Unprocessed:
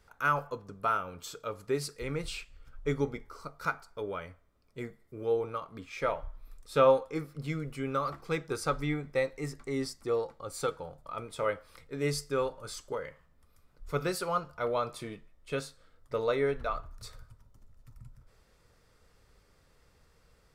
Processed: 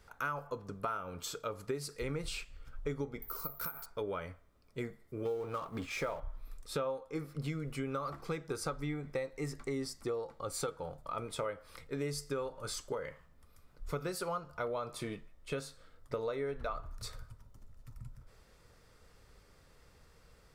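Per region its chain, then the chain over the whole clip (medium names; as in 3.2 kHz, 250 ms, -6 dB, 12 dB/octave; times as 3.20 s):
3.22–3.86 s: careless resampling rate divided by 3×, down none, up zero stuff + compression 10:1, threshold -30 dBFS
5.25–6.20 s: companding laws mixed up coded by mu + expander -44 dBFS
whole clip: dynamic bell 2.7 kHz, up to -3 dB, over -44 dBFS, Q 0.75; compression 8:1, threshold -36 dBFS; trim +2.5 dB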